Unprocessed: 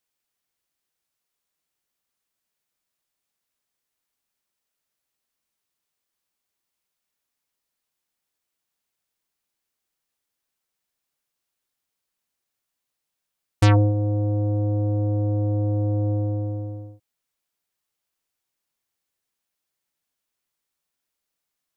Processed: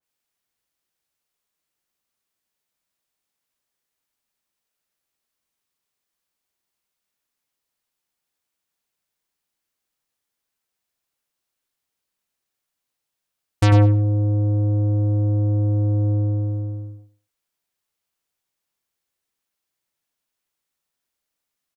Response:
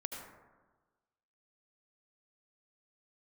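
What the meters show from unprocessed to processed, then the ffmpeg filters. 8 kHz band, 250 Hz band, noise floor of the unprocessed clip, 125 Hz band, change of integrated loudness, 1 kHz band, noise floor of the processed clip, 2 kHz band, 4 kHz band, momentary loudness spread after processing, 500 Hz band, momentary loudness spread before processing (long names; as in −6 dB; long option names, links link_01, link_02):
can't be measured, +1.5 dB, −83 dBFS, +3.5 dB, +3.0 dB, 0.0 dB, −82 dBFS, +0.5 dB, +0.5 dB, 12 LU, −1.0 dB, 11 LU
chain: -filter_complex "[0:a]asplit=2[link_01][link_02];[link_02]adelay=97,lowpass=frequency=4900:poles=1,volume=-6dB,asplit=2[link_03][link_04];[link_04]adelay=97,lowpass=frequency=4900:poles=1,volume=0.22,asplit=2[link_05][link_06];[link_06]adelay=97,lowpass=frequency=4900:poles=1,volume=0.22[link_07];[link_03][link_05][link_07]amix=inputs=3:normalize=0[link_08];[link_01][link_08]amix=inputs=2:normalize=0,adynamicequalizer=threshold=0.0112:dfrequency=2600:dqfactor=0.7:tfrequency=2600:tqfactor=0.7:attack=5:release=100:ratio=0.375:range=1.5:mode=cutabove:tftype=highshelf"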